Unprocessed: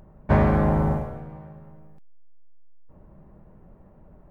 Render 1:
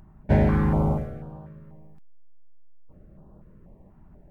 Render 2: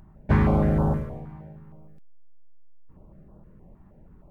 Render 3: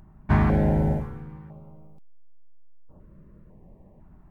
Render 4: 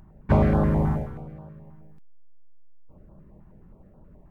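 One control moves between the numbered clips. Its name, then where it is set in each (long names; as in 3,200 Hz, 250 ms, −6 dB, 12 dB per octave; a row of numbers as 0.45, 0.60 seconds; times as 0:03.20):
notch on a step sequencer, speed: 4.1, 6.4, 2, 9.4 Hertz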